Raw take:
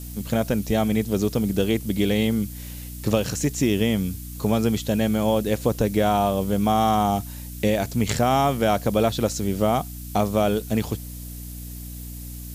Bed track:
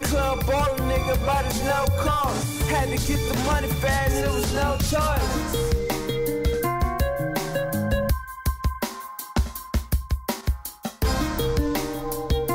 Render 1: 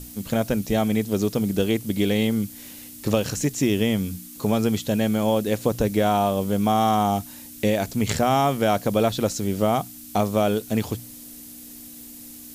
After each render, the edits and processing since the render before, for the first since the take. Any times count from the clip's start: notches 60/120/180 Hz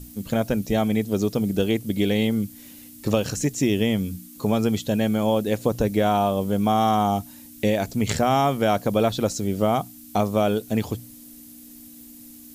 denoiser 6 dB, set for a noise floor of -42 dBFS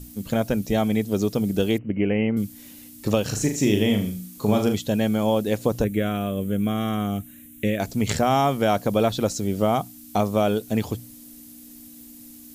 1.78–2.37 Chebyshev low-pass 3000 Hz, order 10; 3.25–4.74 flutter echo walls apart 6.6 m, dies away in 0.39 s; 5.84–7.8 fixed phaser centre 2100 Hz, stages 4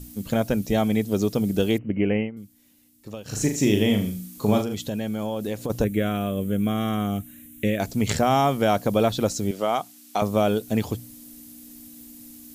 2.16–3.4 dip -15.5 dB, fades 0.15 s; 4.61–5.7 compressor, threshold -24 dBFS; 9.51–10.22 weighting filter A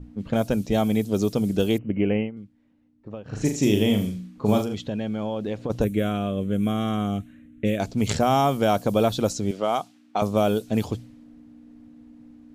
low-pass opened by the level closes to 1100 Hz, open at -17.5 dBFS; dynamic EQ 1900 Hz, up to -5 dB, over -46 dBFS, Q 3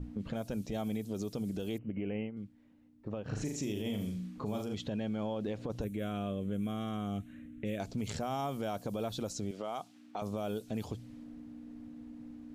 compressor 4:1, threshold -33 dBFS, peak gain reduction 15 dB; limiter -27.5 dBFS, peak gain reduction 8 dB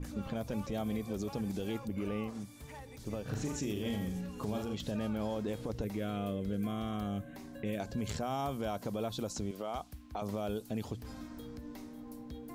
add bed track -26 dB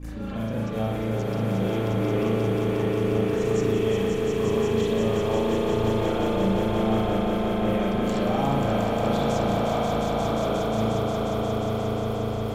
swelling echo 0.178 s, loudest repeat 5, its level -5 dB; spring tank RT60 1.1 s, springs 36 ms, chirp 25 ms, DRR -7.5 dB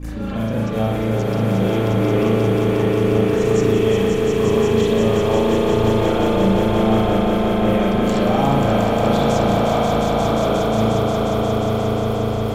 gain +7 dB

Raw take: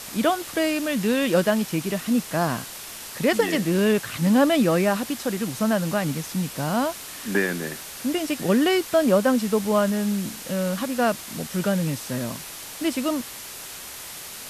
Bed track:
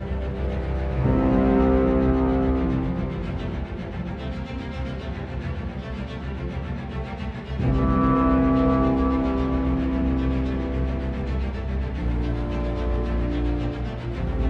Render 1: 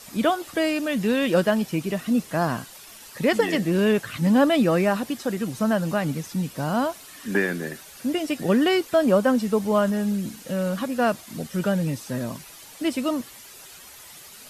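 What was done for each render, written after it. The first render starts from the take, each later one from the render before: denoiser 10 dB, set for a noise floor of -38 dBFS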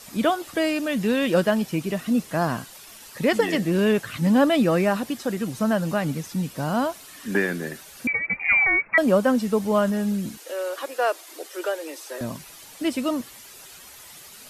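8.07–8.98 inverted band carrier 2600 Hz; 10.37–12.21 steep high-pass 320 Hz 72 dB/oct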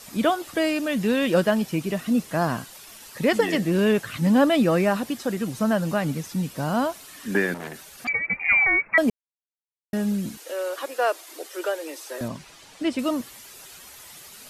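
7.54–8.09 core saturation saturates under 1800 Hz; 9.1–9.93 mute; 12.28–12.99 air absorption 60 m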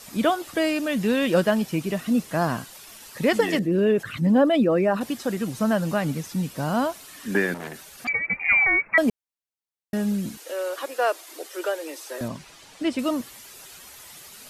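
3.59–5.01 formant sharpening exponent 1.5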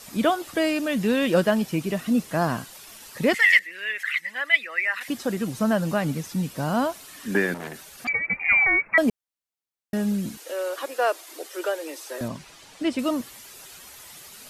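3.34–5.08 resonant high-pass 2000 Hz, resonance Q 9.9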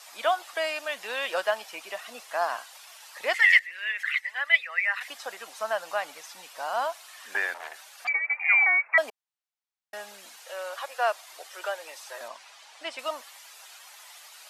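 Chebyshev high-pass 720 Hz, order 3; high shelf 8200 Hz -10.5 dB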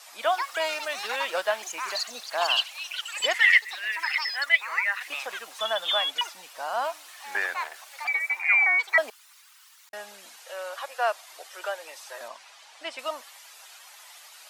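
echoes that change speed 0.218 s, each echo +7 st, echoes 3, each echo -6 dB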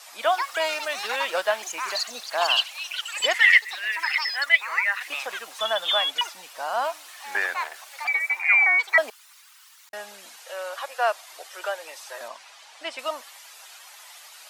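gain +2.5 dB

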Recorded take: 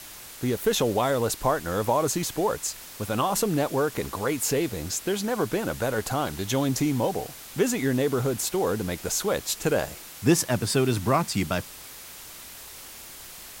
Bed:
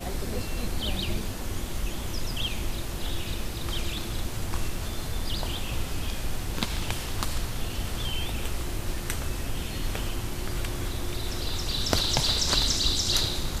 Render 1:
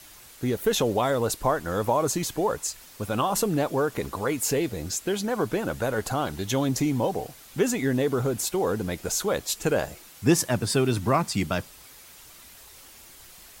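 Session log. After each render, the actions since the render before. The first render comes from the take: denoiser 7 dB, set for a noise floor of -43 dBFS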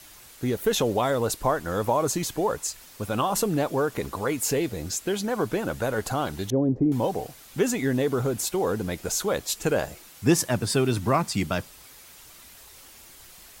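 6.5–6.92 synth low-pass 450 Hz, resonance Q 1.6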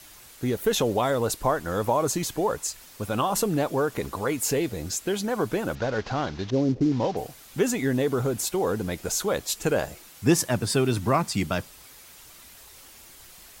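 5.75–7.17 CVSD 32 kbps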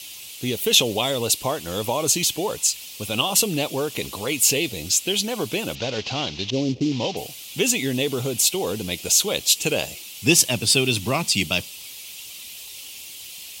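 HPF 76 Hz; resonant high shelf 2100 Hz +9.5 dB, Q 3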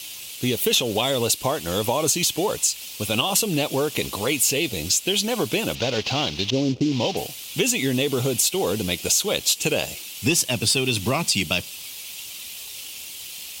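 sample leveller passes 1; compressor 4:1, threshold -18 dBFS, peak gain reduction 8.5 dB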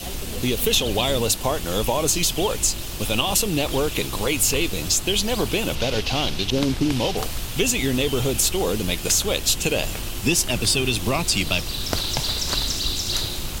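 add bed 0 dB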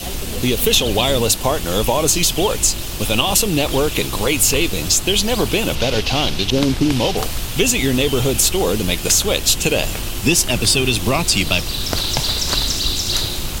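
gain +5 dB; limiter -1 dBFS, peak gain reduction 2.5 dB

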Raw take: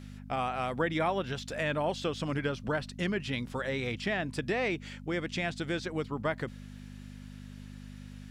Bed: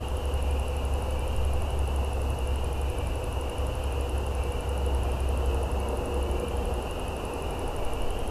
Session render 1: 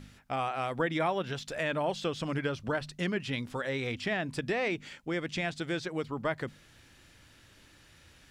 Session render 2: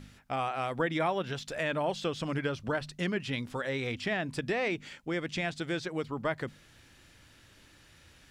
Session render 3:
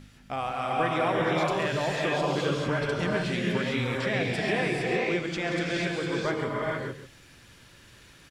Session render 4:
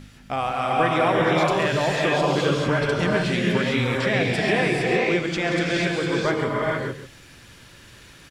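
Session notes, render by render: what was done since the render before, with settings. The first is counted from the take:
de-hum 50 Hz, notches 5
nothing audible
echo 0.137 s -11 dB; non-linear reverb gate 0.48 s rising, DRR -3.5 dB
gain +6 dB

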